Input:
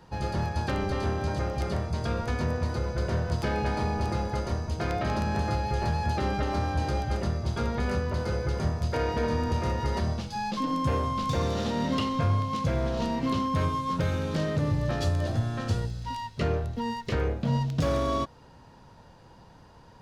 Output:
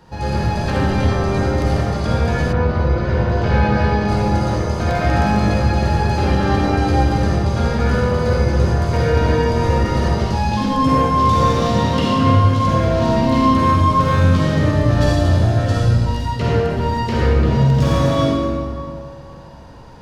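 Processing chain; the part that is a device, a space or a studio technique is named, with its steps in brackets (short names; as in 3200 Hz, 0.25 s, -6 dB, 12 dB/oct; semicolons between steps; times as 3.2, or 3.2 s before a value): stairwell (reverb RT60 2.2 s, pre-delay 41 ms, DRR -5.5 dB); 2.52–4.07 LPF 3000 Hz -> 5100 Hz 12 dB/oct; gain +4.5 dB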